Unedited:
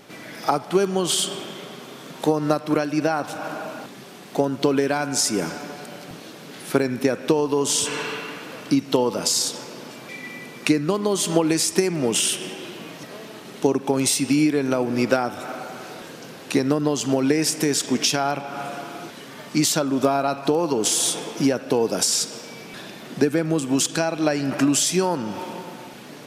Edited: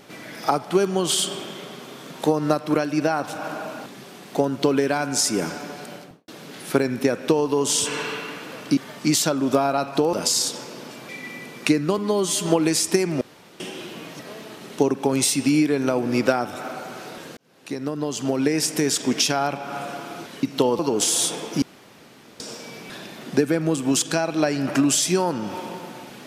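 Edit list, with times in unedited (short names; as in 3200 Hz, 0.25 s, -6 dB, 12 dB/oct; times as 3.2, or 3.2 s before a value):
5.91–6.28 studio fade out
8.77–9.13 swap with 19.27–20.63
10.98–11.3 stretch 1.5×
12.05–12.44 room tone
16.21–17.95 fade in equal-power
21.46–22.24 room tone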